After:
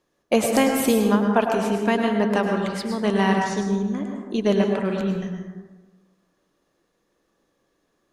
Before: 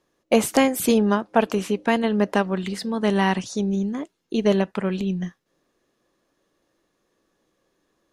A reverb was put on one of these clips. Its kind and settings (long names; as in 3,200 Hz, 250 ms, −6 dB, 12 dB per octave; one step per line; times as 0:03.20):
dense smooth reverb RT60 1.3 s, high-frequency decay 0.4×, pre-delay 90 ms, DRR 2 dB
level −1.5 dB